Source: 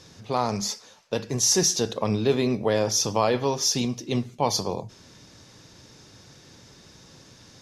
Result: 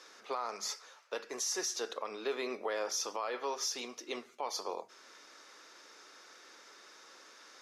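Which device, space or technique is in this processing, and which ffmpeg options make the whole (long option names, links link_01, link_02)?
laptop speaker: -af "highpass=frequency=360:width=0.5412,highpass=frequency=360:width=1.3066,equalizer=frequency=1300:width_type=o:width=0.58:gain=11,equalizer=frequency=2100:width_type=o:width=0.58:gain=5,alimiter=limit=-19.5dB:level=0:latency=1:release=443,volume=-6dB"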